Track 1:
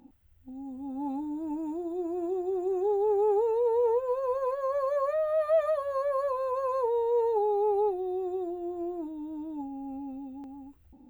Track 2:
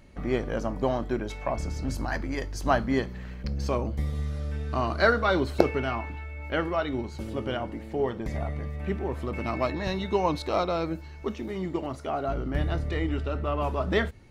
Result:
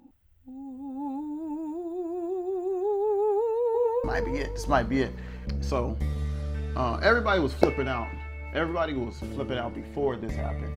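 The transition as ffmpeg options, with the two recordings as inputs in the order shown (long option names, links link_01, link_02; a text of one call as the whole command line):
ffmpeg -i cue0.wav -i cue1.wav -filter_complex "[0:a]apad=whole_dur=10.76,atrim=end=10.76,atrim=end=4.042[link_01];[1:a]atrim=start=2.008:end=8.73[link_02];[link_01][link_02]acrossfade=duration=0.004:curve1=hsin:curve2=hsin,asplit=2[link_03][link_04];[link_04]afade=type=in:start_time=3.37:duration=0.01,afade=type=out:start_time=4.04:duration=0.01,aecho=0:1:370|740|1110|1480|1850:0.446684|0.178673|0.0714694|0.0285877|0.0114351[link_05];[link_03][link_05]amix=inputs=2:normalize=0" out.wav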